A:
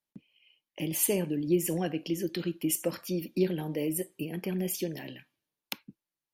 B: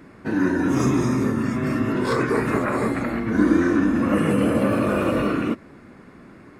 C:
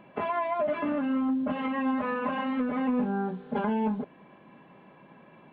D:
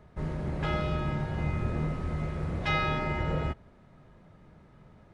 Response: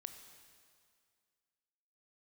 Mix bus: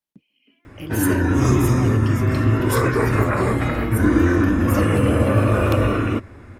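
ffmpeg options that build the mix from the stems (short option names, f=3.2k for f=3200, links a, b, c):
-filter_complex "[0:a]volume=-0.5dB,asplit=2[a][b];[1:a]lowshelf=f=130:t=q:w=3:g=8,bandreject=f=4.4k:w=9.4,adelay=650,volume=2.5dB[c];[2:a]asplit=3[d][e][f];[d]bandpass=f=270:t=q:w=8,volume=0dB[g];[e]bandpass=f=2.29k:t=q:w=8,volume=-6dB[h];[f]bandpass=f=3.01k:t=q:w=8,volume=-9dB[i];[g][h][i]amix=inputs=3:normalize=0,adelay=300,volume=-15dB[j];[3:a]adelay=950,volume=-3dB[k];[b]apad=whole_len=268317[l];[k][l]sidechaincompress=threshold=-33dB:ratio=8:attack=16:release=277[m];[a][c][j][m]amix=inputs=4:normalize=0"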